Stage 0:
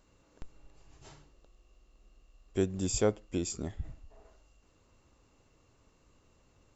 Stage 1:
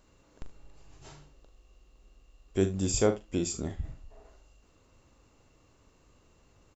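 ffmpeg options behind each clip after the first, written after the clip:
ffmpeg -i in.wav -af "aecho=1:1:41|75:0.355|0.133,volume=2.5dB" out.wav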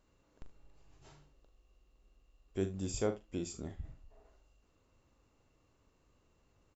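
ffmpeg -i in.wav -af "highshelf=frequency=6500:gain=-6,volume=-8.5dB" out.wav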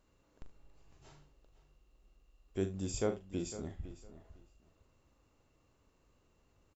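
ffmpeg -i in.wav -filter_complex "[0:a]asplit=2[link_01][link_02];[link_02]adelay=505,lowpass=frequency=5000:poles=1,volume=-14dB,asplit=2[link_03][link_04];[link_04]adelay=505,lowpass=frequency=5000:poles=1,volume=0.2[link_05];[link_01][link_03][link_05]amix=inputs=3:normalize=0" out.wav

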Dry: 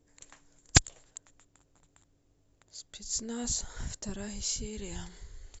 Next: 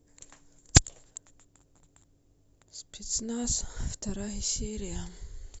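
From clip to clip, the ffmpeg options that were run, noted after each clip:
ffmpeg -i in.wav -af "equalizer=frequency=1900:width=0.4:gain=-6,volume=4.5dB" out.wav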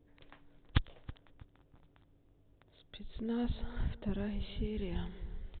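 ffmpeg -i in.wav -filter_complex "[0:a]aresample=8000,asoftclip=type=tanh:threshold=-17.5dB,aresample=44100,asplit=2[link_01][link_02];[link_02]adelay=324,lowpass=frequency=1300:poles=1,volume=-16.5dB,asplit=2[link_03][link_04];[link_04]adelay=324,lowpass=frequency=1300:poles=1,volume=0.37,asplit=2[link_05][link_06];[link_06]adelay=324,lowpass=frequency=1300:poles=1,volume=0.37[link_07];[link_01][link_03][link_05][link_07]amix=inputs=4:normalize=0,volume=-1dB" out.wav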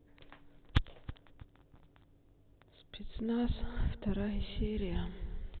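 ffmpeg -i in.wav -af "asoftclip=type=tanh:threshold=-17dB,volume=2dB" out.wav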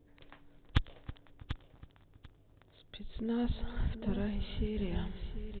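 ffmpeg -i in.wav -af "aecho=1:1:741|1482:0.299|0.0537" out.wav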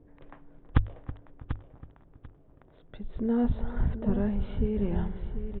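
ffmpeg -i in.wav -af "lowpass=1300,bandreject=frequency=50:width_type=h:width=6,bandreject=frequency=100:width_type=h:width=6,volume=7.5dB" out.wav

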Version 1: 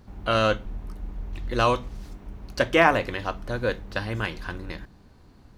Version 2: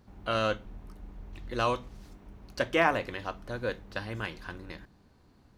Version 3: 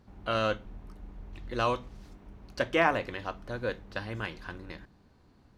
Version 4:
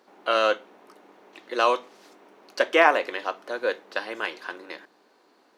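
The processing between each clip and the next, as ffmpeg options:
ffmpeg -i in.wav -af "lowshelf=frequency=61:gain=-7,volume=-6.5dB" out.wav
ffmpeg -i in.wav -af "highshelf=frequency=8600:gain=-7.5" out.wav
ffmpeg -i in.wav -af "highpass=frequency=350:width=0.5412,highpass=frequency=350:width=1.3066,volume=7.5dB" out.wav

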